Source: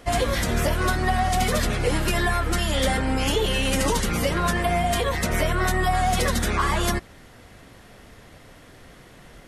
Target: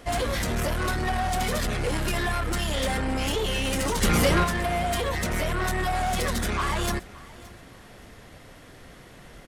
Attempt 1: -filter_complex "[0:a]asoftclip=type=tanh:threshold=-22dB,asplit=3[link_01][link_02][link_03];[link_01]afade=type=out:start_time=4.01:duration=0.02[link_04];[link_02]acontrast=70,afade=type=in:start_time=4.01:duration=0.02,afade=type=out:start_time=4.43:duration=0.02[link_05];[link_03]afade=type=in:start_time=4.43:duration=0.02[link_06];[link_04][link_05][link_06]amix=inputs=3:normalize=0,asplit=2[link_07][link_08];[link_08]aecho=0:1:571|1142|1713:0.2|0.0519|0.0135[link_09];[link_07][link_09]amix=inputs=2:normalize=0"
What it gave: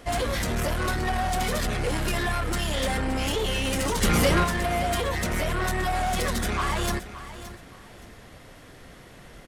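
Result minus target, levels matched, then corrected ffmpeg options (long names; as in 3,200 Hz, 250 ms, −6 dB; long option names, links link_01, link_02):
echo-to-direct +7 dB
-filter_complex "[0:a]asoftclip=type=tanh:threshold=-22dB,asplit=3[link_01][link_02][link_03];[link_01]afade=type=out:start_time=4.01:duration=0.02[link_04];[link_02]acontrast=70,afade=type=in:start_time=4.01:duration=0.02,afade=type=out:start_time=4.43:duration=0.02[link_05];[link_03]afade=type=in:start_time=4.43:duration=0.02[link_06];[link_04][link_05][link_06]amix=inputs=3:normalize=0,asplit=2[link_07][link_08];[link_08]aecho=0:1:571|1142:0.0891|0.0232[link_09];[link_07][link_09]amix=inputs=2:normalize=0"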